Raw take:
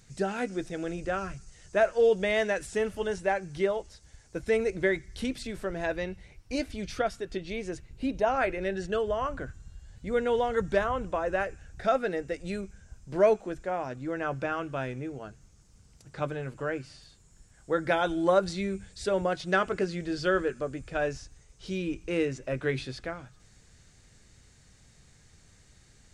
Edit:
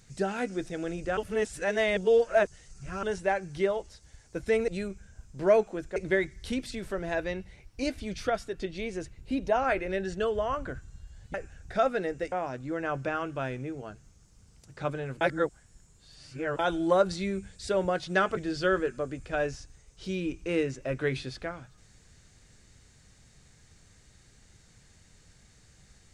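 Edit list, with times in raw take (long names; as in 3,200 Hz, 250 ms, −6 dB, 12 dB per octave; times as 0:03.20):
0:01.17–0:03.03: reverse
0:10.06–0:11.43: remove
0:12.41–0:13.69: move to 0:04.68
0:16.58–0:17.96: reverse
0:19.74–0:19.99: remove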